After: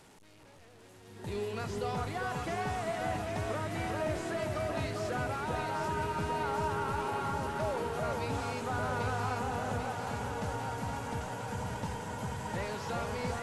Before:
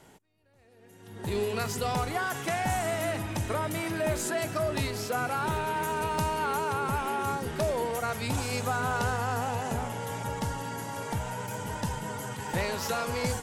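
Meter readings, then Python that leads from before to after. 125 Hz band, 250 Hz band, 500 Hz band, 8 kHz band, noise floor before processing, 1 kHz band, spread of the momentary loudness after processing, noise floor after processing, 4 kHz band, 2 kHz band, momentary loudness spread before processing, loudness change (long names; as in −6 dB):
−3.5 dB, −3.5 dB, −3.5 dB, −10.0 dB, −57 dBFS, −4.0 dB, 5 LU, −56 dBFS, −6.5 dB, −5.0 dB, 6 LU, −4.5 dB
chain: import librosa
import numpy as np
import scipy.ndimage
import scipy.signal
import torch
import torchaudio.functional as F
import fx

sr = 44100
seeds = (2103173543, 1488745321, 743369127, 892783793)

p1 = fx.delta_mod(x, sr, bps=64000, step_db=-45.0)
p2 = fx.high_shelf(p1, sr, hz=10000.0, db=-6.0)
p3 = p2 + fx.echo_alternate(p2, sr, ms=397, hz=1400.0, feedback_pct=79, wet_db=-2.5, dry=0)
y = p3 * librosa.db_to_amplitude(-6.5)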